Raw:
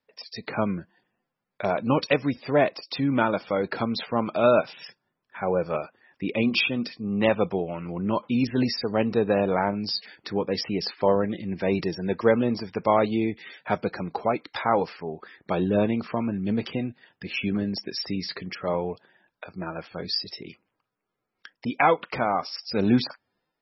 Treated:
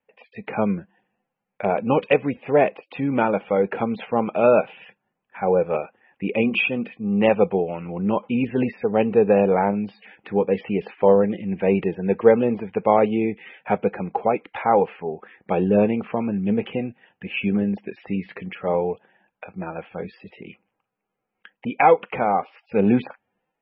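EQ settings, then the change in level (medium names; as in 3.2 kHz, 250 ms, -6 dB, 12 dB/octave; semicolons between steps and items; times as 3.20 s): Chebyshev low-pass 3.1 kHz, order 5; dynamic bell 420 Hz, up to +6 dB, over -39 dBFS, Q 3; graphic EQ with 31 bands 200 Hz +7 dB, 500 Hz +6 dB, 800 Hz +9 dB, 2.5 kHz +6 dB; -1.0 dB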